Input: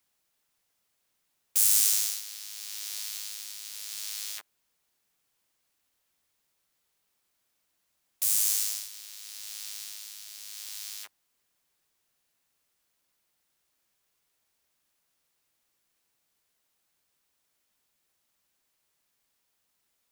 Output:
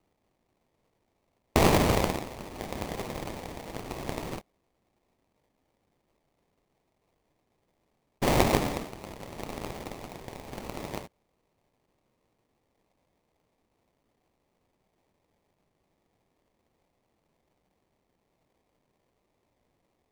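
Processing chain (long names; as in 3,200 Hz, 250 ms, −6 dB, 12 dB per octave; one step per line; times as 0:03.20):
sample-rate reduction 1,500 Hz, jitter 20%
level +2 dB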